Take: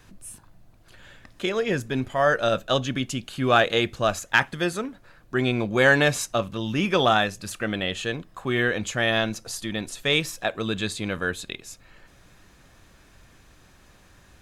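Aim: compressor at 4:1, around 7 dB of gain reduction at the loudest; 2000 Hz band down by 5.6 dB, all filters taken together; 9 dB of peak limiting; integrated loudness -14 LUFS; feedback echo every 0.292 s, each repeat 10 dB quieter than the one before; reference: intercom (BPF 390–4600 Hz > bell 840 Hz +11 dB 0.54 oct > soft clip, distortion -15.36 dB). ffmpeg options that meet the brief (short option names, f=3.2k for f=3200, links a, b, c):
-af "equalizer=f=2k:t=o:g=-8.5,acompressor=threshold=-24dB:ratio=4,alimiter=limit=-21dB:level=0:latency=1,highpass=390,lowpass=4.6k,equalizer=f=840:t=o:w=0.54:g=11,aecho=1:1:292|584|876|1168:0.316|0.101|0.0324|0.0104,asoftclip=threshold=-22.5dB,volume=20.5dB"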